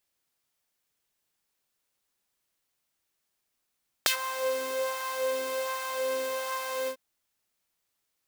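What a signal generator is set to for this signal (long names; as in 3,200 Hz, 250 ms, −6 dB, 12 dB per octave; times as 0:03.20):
subtractive patch with filter wobble C5, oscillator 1 saw, sub −17 dB, noise −8 dB, filter highpass, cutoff 440 Hz, Q 2.4, filter envelope 3.5 octaves, filter decay 0.10 s, filter sustain 10%, attack 1.1 ms, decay 0.10 s, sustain −16 dB, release 0.08 s, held 2.82 s, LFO 1.3 Hz, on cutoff 0.7 octaves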